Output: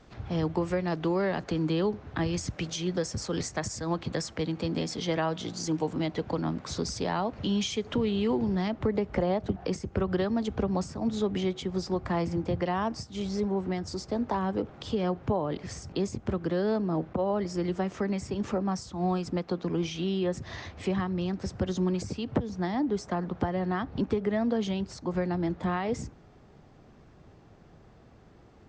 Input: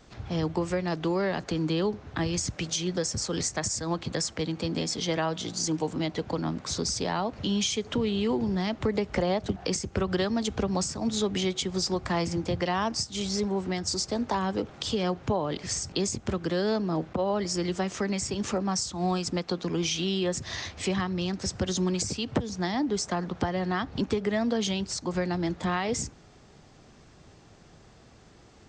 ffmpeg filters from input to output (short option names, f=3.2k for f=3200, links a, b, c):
-af "asetnsamples=n=441:p=0,asendcmd='8.68 lowpass f 1300',lowpass=f=2.8k:p=1"